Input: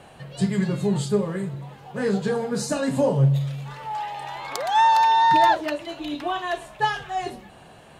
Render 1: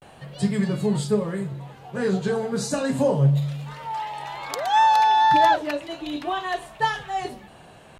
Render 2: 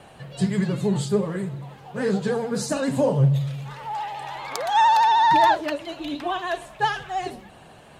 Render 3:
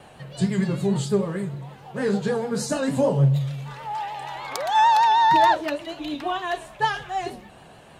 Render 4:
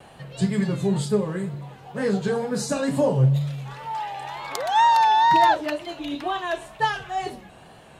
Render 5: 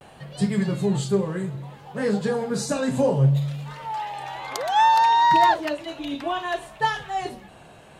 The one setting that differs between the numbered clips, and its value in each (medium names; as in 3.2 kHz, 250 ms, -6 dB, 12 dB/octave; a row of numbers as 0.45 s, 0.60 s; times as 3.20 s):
vibrato, rate: 0.33 Hz, 13 Hz, 6.6 Hz, 2.1 Hz, 0.61 Hz